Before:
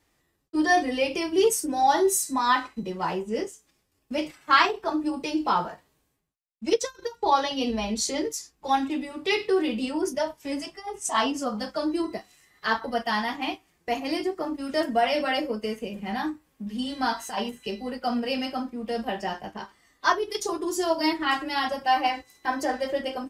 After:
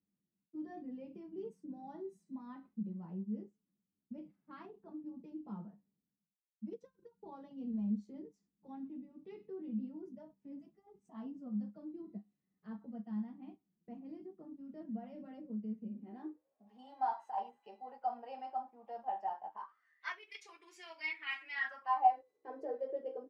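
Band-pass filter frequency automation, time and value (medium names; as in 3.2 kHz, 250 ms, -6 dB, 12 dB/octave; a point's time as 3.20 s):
band-pass filter, Q 10
15.84 s 200 Hz
16.71 s 820 Hz
19.47 s 820 Hz
20.11 s 2.3 kHz
21.51 s 2.3 kHz
22.32 s 460 Hz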